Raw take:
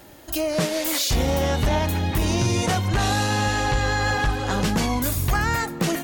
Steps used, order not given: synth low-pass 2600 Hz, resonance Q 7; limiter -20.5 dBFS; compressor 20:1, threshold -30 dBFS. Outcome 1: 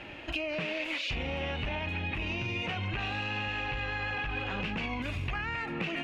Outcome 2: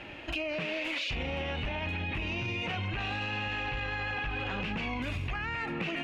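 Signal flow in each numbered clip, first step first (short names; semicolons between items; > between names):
limiter > synth low-pass > compressor; synth low-pass > limiter > compressor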